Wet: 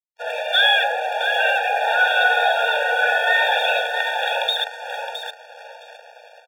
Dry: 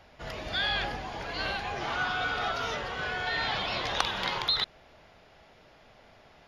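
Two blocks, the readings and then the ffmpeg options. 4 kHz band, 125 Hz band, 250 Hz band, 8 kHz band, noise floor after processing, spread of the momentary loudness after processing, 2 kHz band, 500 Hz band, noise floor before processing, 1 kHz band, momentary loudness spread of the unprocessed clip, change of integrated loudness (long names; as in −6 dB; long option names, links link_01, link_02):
+9.5 dB, below −40 dB, below −25 dB, +5.5 dB, −47 dBFS, 13 LU, +14.5 dB, +14.5 dB, −58 dBFS, +12.5 dB, 7 LU, +12.0 dB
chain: -filter_complex "[0:a]equalizer=frequency=67:width_type=o:width=2.8:gain=6,dynaudnorm=framelen=130:gausssize=3:maxgain=15dB,asplit=2[link_01][link_02];[link_02]adelay=665,lowpass=frequency=1600:poles=1,volume=-4dB,asplit=2[link_03][link_04];[link_04]adelay=665,lowpass=frequency=1600:poles=1,volume=0.31,asplit=2[link_05][link_06];[link_06]adelay=665,lowpass=frequency=1600:poles=1,volume=0.31,asplit=2[link_07][link_08];[link_08]adelay=665,lowpass=frequency=1600:poles=1,volume=0.31[link_09];[link_01][link_03][link_05][link_07][link_09]amix=inputs=5:normalize=0,asplit=2[link_10][link_11];[link_11]acompressor=threshold=-26dB:ratio=6,volume=-2dB[link_12];[link_10][link_12]amix=inputs=2:normalize=0,aresample=8000,aresample=44100,aeval=exprs='sgn(val(0))*max(abs(val(0))-0.0188,0)':channel_layout=same,bandreject=frequency=45.82:width_type=h:width=4,bandreject=frequency=91.64:width_type=h:width=4,bandreject=frequency=137.46:width_type=h:width=4,bandreject=frequency=183.28:width_type=h:width=4,bandreject=frequency=229.1:width_type=h:width=4,bandreject=frequency=274.92:width_type=h:width=4,bandreject=frequency=320.74:width_type=h:width=4,bandreject=frequency=366.56:width_type=h:width=4,bandreject=frequency=412.38:width_type=h:width=4,bandreject=frequency=458.2:width_type=h:width=4,bandreject=frequency=504.02:width_type=h:width=4,bandreject=frequency=549.84:width_type=h:width=4,bandreject=frequency=595.66:width_type=h:width=4,bandreject=frequency=641.48:width_type=h:width=4,bandreject=frequency=687.3:width_type=h:width=4,bandreject=frequency=733.12:width_type=h:width=4,bandreject=frequency=778.94:width_type=h:width=4,bandreject=frequency=824.76:width_type=h:width=4,bandreject=frequency=870.58:width_type=h:width=4,bandreject=frequency=916.4:width_type=h:width=4,bandreject=frequency=962.22:width_type=h:width=4,bandreject=frequency=1008.04:width_type=h:width=4,bandreject=frequency=1053.86:width_type=h:width=4,bandreject=frequency=1099.68:width_type=h:width=4,bandreject=frequency=1145.5:width_type=h:width=4,bandreject=frequency=1191.32:width_type=h:width=4,bandreject=frequency=1237.14:width_type=h:width=4,bandreject=frequency=1282.96:width_type=h:width=4,bandreject=frequency=1328.78:width_type=h:width=4,bandreject=frequency=1374.6:width_type=h:width=4,bandreject=frequency=1420.42:width_type=h:width=4,bandreject=frequency=1466.24:width_type=h:width=4,bandreject=frequency=1512.06:width_type=h:width=4,bandreject=frequency=1557.88:width_type=h:width=4,afftfilt=real='re*eq(mod(floor(b*sr/1024/470),2),1)':imag='im*eq(mod(floor(b*sr/1024/470),2),1)':win_size=1024:overlap=0.75"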